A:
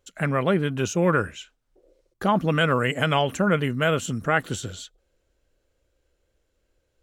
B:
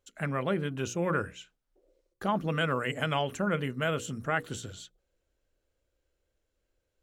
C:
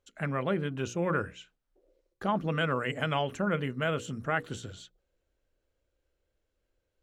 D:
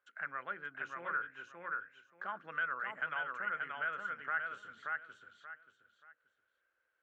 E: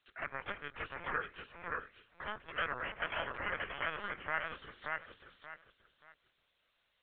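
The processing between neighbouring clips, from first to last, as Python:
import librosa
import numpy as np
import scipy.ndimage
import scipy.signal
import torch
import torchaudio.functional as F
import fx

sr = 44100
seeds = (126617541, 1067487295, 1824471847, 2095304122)

y1 = fx.hum_notches(x, sr, base_hz=60, count=9)
y1 = y1 * 10.0 ** (-7.5 / 20.0)
y2 = fx.high_shelf(y1, sr, hz=7900.0, db=-11.5)
y3 = fx.bandpass_q(y2, sr, hz=1500.0, q=4.4)
y3 = fx.echo_feedback(y3, sr, ms=580, feedback_pct=16, wet_db=-4)
y3 = fx.band_squash(y3, sr, depth_pct=40)
y4 = fx.spec_clip(y3, sr, under_db=20)
y4 = fx.dmg_noise_colour(y4, sr, seeds[0], colour='violet', level_db=-58.0)
y4 = fx.lpc_vocoder(y4, sr, seeds[1], excitation='pitch_kept', order=16)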